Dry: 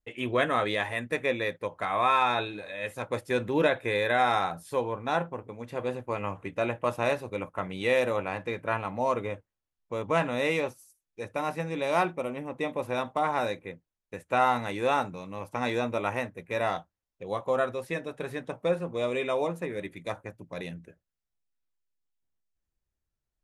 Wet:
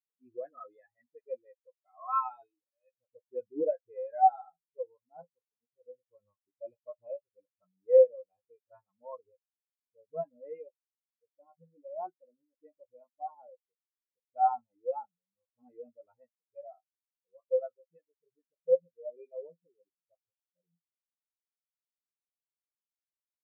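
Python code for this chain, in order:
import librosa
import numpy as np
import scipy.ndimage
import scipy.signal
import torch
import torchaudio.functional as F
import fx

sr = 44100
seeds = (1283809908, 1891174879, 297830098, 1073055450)

y = fx.dispersion(x, sr, late='highs', ms=40.0, hz=320.0)
y = fx.spectral_expand(y, sr, expansion=4.0)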